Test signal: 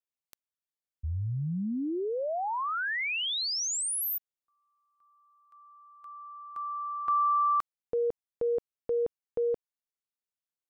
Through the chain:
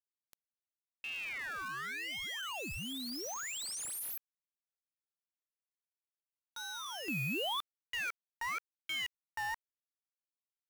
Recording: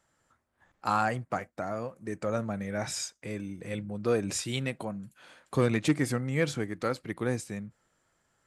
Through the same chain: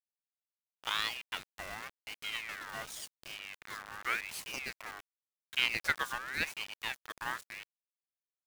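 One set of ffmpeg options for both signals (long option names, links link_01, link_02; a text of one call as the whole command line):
ffmpeg -i in.wav -af "aeval=exprs='0.251*(cos(1*acos(clip(val(0)/0.251,-1,1)))-cos(1*PI/2))+0.00891*(cos(2*acos(clip(val(0)/0.251,-1,1)))-cos(2*PI/2))+0.0501*(cos(3*acos(clip(val(0)/0.251,-1,1)))-cos(3*PI/2))':channel_layout=same,acrusher=bits=6:mix=0:aa=0.000001,aeval=exprs='val(0)*sin(2*PI*2000*n/s+2000*0.35/0.9*sin(2*PI*0.9*n/s))':channel_layout=same" out.wav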